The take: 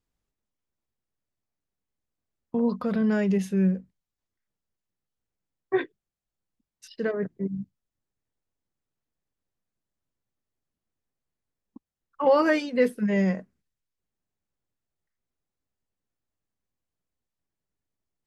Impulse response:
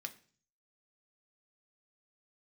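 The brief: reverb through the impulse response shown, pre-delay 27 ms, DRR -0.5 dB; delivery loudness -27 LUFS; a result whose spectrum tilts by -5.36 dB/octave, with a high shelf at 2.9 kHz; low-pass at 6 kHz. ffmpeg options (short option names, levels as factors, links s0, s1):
-filter_complex "[0:a]lowpass=6000,highshelf=f=2900:g=-6.5,asplit=2[s0][s1];[1:a]atrim=start_sample=2205,adelay=27[s2];[s1][s2]afir=irnorm=-1:irlink=0,volume=1.33[s3];[s0][s3]amix=inputs=2:normalize=0,volume=0.708"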